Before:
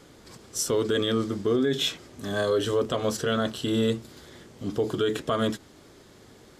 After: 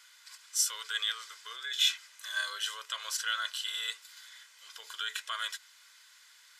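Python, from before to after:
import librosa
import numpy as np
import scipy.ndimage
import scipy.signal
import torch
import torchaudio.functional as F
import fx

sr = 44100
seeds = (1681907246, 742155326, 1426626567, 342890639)

y = scipy.signal.sosfilt(scipy.signal.butter(4, 1400.0, 'highpass', fs=sr, output='sos'), x)
y = y + 0.5 * np.pad(y, (int(2.0 * sr / 1000.0), 0))[:len(y)]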